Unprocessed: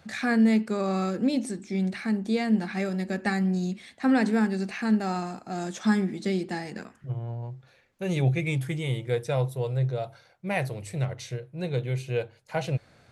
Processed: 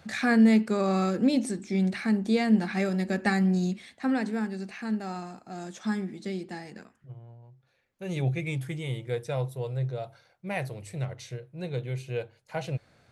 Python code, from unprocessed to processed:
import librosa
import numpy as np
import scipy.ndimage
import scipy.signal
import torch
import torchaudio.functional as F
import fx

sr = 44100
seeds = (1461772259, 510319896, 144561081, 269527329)

y = fx.gain(x, sr, db=fx.line((3.67, 1.5), (4.25, -6.5), (6.71, -6.5), (7.44, -16.5), (8.18, -4.0)))